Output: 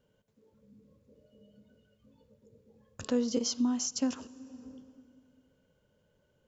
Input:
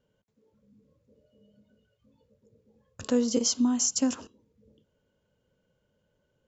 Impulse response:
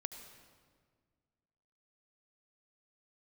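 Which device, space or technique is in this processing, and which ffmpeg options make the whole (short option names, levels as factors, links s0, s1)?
ducked reverb: -filter_complex "[0:a]asplit=3[s0][s1][s2];[1:a]atrim=start_sample=2205[s3];[s1][s3]afir=irnorm=-1:irlink=0[s4];[s2]apad=whole_len=285592[s5];[s4][s5]sidechaincompress=threshold=0.00708:ratio=8:attack=8.3:release=424,volume=1.68[s6];[s0][s6]amix=inputs=2:normalize=0,asettb=1/sr,asplit=3[s7][s8][s9];[s7]atrim=end=3.054[s10];[s8]atrim=start=3.05:end=4.16,asetpts=PTS-STARTPTS,afade=t=in:d=0.004:c=qsin,afade=t=out:st=1.106:d=0.004:c=qsin,lowpass=f=6100:w=0.5412,lowpass=f=6100:w=1.3066[s11];[s9]atrim=start=4.156[s12];[s10][s11]acrossfade=d=0.004:c1=hsin:c2=qsin[s13];[s13][s12]acrossfade=d=0.004:c1=qsin:c2=hsin,volume=0.562"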